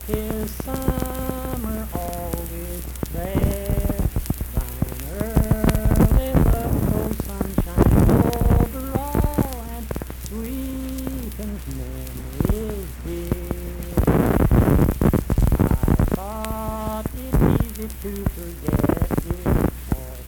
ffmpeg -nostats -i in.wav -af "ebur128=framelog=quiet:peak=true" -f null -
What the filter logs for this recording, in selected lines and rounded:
Integrated loudness:
  I:         -23.0 LUFS
  Threshold: -33.0 LUFS
Loudness range:
  LRA:         8.2 LU
  Threshold: -42.7 LUFS
  LRA low:   -28.3 LUFS
  LRA high:  -20.1 LUFS
True peak:
  Peak:       -3.0 dBFS